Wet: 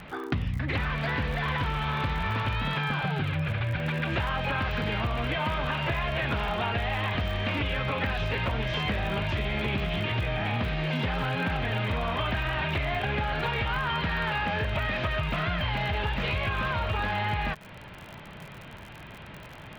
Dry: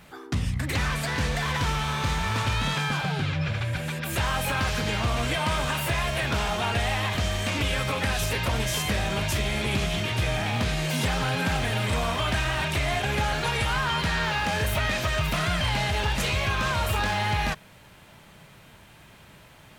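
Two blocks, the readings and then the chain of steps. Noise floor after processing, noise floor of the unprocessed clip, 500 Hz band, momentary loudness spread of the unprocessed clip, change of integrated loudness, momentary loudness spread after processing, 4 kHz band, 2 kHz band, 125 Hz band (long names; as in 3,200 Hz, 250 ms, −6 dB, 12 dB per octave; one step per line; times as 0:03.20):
−45 dBFS, −51 dBFS, −2.0 dB, 2 LU, −2.5 dB, 5 LU, −5.0 dB, −2.0 dB, −2.0 dB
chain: low-pass filter 3,300 Hz 24 dB per octave
downward compressor 12 to 1, threshold −32 dBFS, peak gain reduction 11.5 dB
surface crackle 52 per second −42 dBFS
level +7 dB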